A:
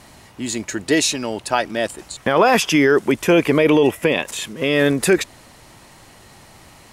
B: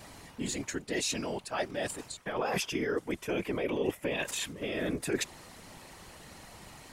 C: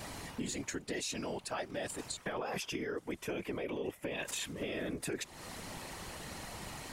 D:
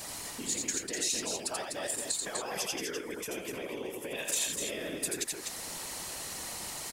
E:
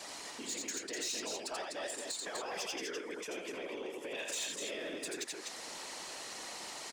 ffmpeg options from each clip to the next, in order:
ffmpeg -i in.wav -af "areverse,acompressor=threshold=-26dB:ratio=5,areverse,afftfilt=real='hypot(re,im)*cos(2*PI*random(0))':imag='hypot(re,im)*sin(2*PI*random(1))':win_size=512:overlap=0.75,volume=1.5dB" out.wav
ffmpeg -i in.wav -af "acompressor=threshold=-41dB:ratio=6,volume=5dB" out.wav
ffmpeg -i in.wav -filter_complex "[0:a]bass=frequency=250:gain=-7,treble=frequency=4000:gain=11,asplit=2[link_01][link_02];[link_02]aecho=0:1:85|249:0.668|0.562[link_03];[link_01][link_03]amix=inputs=2:normalize=0,volume=-1dB" out.wav
ffmpeg -i in.wav -filter_complex "[0:a]acrossover=split=230 7600:gain=0.141 1 0.1[link_01][link_02][link_03];[link_01][link_02][link_03]amix=inputs=3:normalize=0,asoftclip=type=tanh:threshold=-30dB,volume=-1.5dB" out.wav

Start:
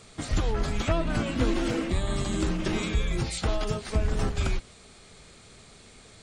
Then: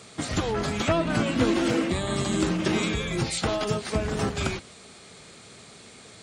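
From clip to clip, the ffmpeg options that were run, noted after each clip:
ffmpeg -i in.wav -af "highpass=120,volume=4.5dB" out.wav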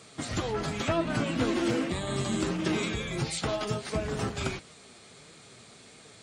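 ffmpeg -i in.wav -af "flanger=delay=6:depth=3:regen=62:speed=1.5:shape=triangular" out.wav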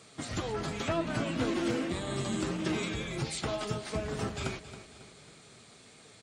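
ffmpeg -i in.wav -af "aecho=1:1:273|546|819|1092|1365:0.211|0.0993|0.0467|0.0219|0.0103,volume=-3.5dB" out.wav

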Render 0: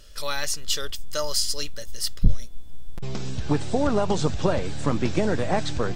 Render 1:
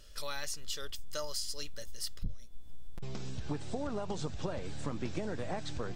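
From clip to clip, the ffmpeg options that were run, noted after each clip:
ffmpeg -i in.wav -af "acompressor=threshold=-26dB:ratio=4,volume=-6.5dB" out.wav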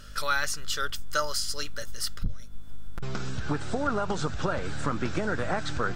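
ffmpeg -i in.wav -af "equalizer=frequency=1400:width_type=o:width=0.57:gain=13.5,aeval=exprs='val(0)+0.00158*(sin(2*PI*50*n/s)+sin(2*PI*2*50*n/s)/2+sin(2*PI*3*50*n/s)/3+sin(2*PI*4*50*n/s)/4+sin(2*PI*5*50*n/s)/5)':channel_layout=same,volume=7dB" out.wav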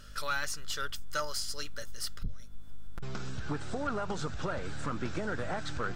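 ffmpeg -i in.wav -af "asoftclip=type=tanh:threshold=-18.5dB,volume=-4.5dB" out.wav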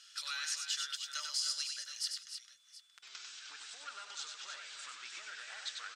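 ffmpeg -i in.wav -af "asuperpass=centerf=4700:order=4:qfactor=0.76,aecho=1:1:96|274|307|724:0.562|0.168|0.376|0.126,volume=1.5dB" out.wav

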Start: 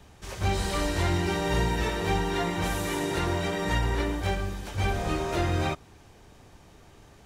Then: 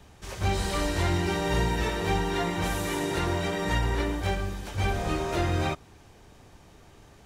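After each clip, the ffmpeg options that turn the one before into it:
ffmpeg -i in.wav -af anull out.wav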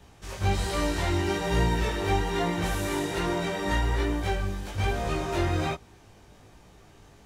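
ffmpeg -i in.wav -af "flanger=delay=17:depth=3.5:speed=1.2,volume=2.5dB" out.wav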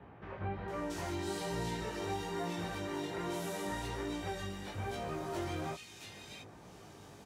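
ffmpeg -i in.wav -filter_complex "[0:a]highpass=110,acompressor=threshold=-47dB:ratio=2,acrossover=split=2200[link_01][link_02];[link_02]adelay=680[link_03];[link_01][link_03]amix=inputs=2:normalize=0,volume=2dB" out.wav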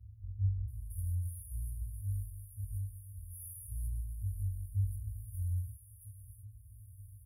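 ffmpeg -i in.wav -af "afftfilt=real='re*(1-between(b*sr/4096,110,9500))':imag='im*(1-between(b*sr/4096,110,9500))':win_size=4096:overlap=0.75,highshelf=frequency=10000:gain=-6,volume=10.5dB" out.wav

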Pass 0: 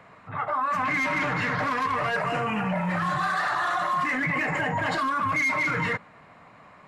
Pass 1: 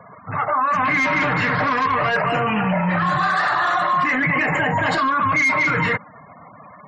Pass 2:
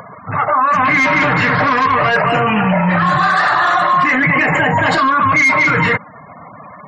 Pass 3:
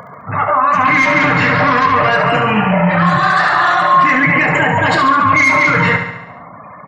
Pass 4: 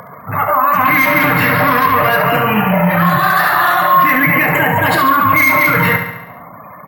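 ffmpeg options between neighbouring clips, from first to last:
ffmpeg -i in.wav -filter_complex "[0:a]afftfilt=real='re*gte(hypot(re,im),0.00562)':imag='im*gte(hypot(re,im),0.00562)':win_size=1024:overlap=0.75,asplit=2[link_01][link_02];[link_02]alimiter=level_in=3.5dB:limit=-24dB:level=0:latency=1:release=82,volume=-3.5dB,volume=-2dB[link_03];[link_01][link_03]amix=inputs=2:normalize=0,volume=4.5dB" out.wav
ffmpeg -i in.wav -af "acompressor=mode=upward:threshold=-37dB:ratio=2.5,volume=6dB" out.wav
ffmpeg -i in.wav -filter_complex "[0:a]asplit=2[link_01][link_02];[link_02]adelay=29,volume=-12.5dB[link_03];[link_01][link_03]amix=inputs=2:normalize=0,asplit=2[link_04][link_05];[link_05]aecho=0:1:70|140|210|280|350|420|490:0.398|0.231|0.134|0.0777|0.0451|0.0261|0.0152[link_06];[link_04][link_06]amix=inputs=2:normalize=0" out.wav
ffmpeg -i in.wav -af "acrusher=samples=3:mix=1:aa=0.000001" out.wav

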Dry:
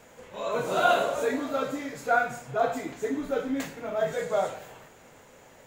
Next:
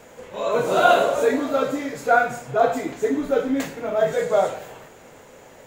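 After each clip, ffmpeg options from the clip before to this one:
ffmpeg -i in.wav -af "equalizer=frequency=440:width=0.96:gain=3.5,volume=5dB" out.wav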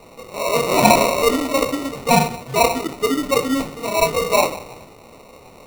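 ffmpeg -i in.wav -af "acrusher=samples=27:mix=1:aa=0.000001,volume=2.5dB" out.wav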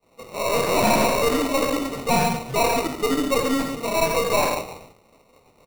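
ffmpeg -i in.wav -af "aecho=1:1:83|139:0.316|0.335,aeval=exprs='(tanh(5.62*val(0)+0.4)-tanh(0.4))/5.62':channel_layout=same,agate=range=-33dB:threshold=-35dB:ratio=3:detection=peak" out.wav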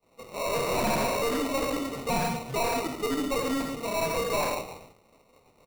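ffmpeg -i in.wav -af "aeval=exprs='0.251*(cos(1*acos(clip(val(0)/0.251,-1,1)))-cos(1*PI/2))+0.1*(cos(2*acos(clip(val(0)/0.251,-1,1)))-cos(2*PI/2))':channel_layout=same,volume=-4.5dB" out.wav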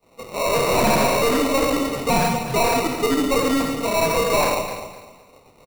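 ffmpeg -i in.wav -af "aecho=1:1:253|506|759:0.251|0.0678|0.0183,volume=8.5dB" out.wav

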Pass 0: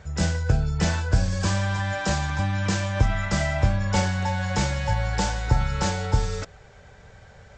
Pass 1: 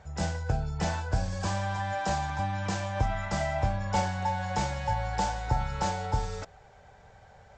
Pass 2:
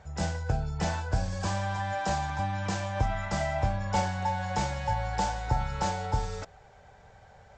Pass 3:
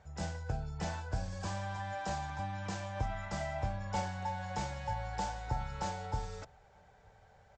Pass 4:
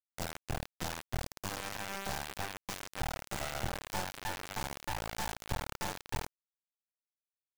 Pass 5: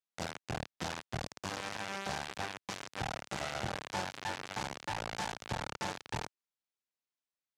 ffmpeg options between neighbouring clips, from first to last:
ffmpeg -i in.wav -af "equalizer=frequency=790:width=2:gain=10,volume=-8dB" out.wav
ffmpeg -i in.wav -af anull out.wav
ffmpeg -i in.wav -filter_complex "[0:a]asplit=2[link_01][link_02];[link_02]adelay=932.9,volume=-29dB,highshelf=frequency=4000:gain=-21[link_03];[link_01][link_03]amix=inputs=2:normalize=0,volume=-8dB" out.wav
ffmpeg -i in.wav -af "acrusher=bits=3:dc=4:mix=0:aa=0.000001,volume=1dB" out.wav
ffmpeg -i in.wav -af "highpass=100,lowpass=6700,volume=1dB" out.wav

